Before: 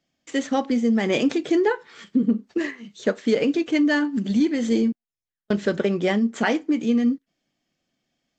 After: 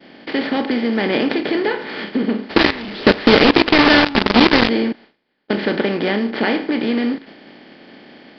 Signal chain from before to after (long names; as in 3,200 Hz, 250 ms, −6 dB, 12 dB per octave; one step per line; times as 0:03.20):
compressor on every frequency bin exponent 0.4
downward expander −32 dBFS
high-shelf EQ 2,700 Hz +5.5 dB
0:02.50–0:04.69: log-companded quantiser 2 bits
downsampling to 11,025 Hz
level −3 dB